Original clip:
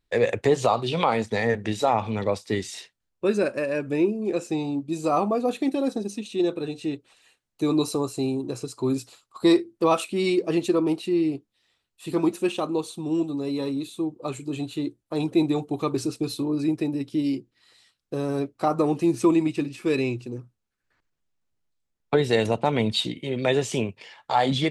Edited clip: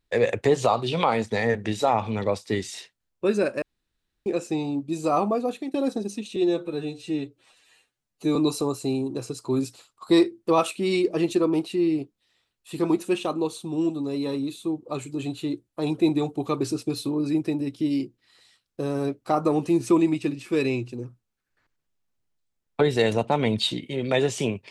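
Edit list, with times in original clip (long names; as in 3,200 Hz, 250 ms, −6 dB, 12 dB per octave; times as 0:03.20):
0:03.62–0:04.26: fill with room tone
0:05.33–0:05.74: fade out, to −12 dB
0:06.36–0:07.69: time-stretch 1.5×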